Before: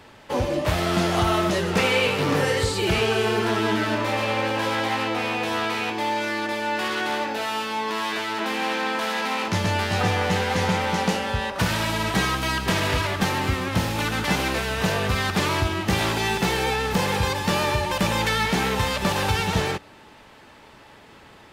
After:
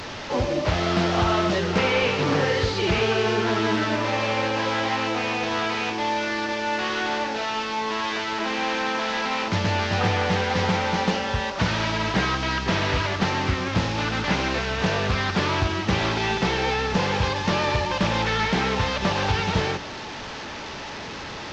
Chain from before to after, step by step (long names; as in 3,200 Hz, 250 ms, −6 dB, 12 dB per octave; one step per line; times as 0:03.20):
linear delta modulator 32 kbit/s, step −28.5 dBFS
highs frequency-modulated by the lows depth 0.23 ms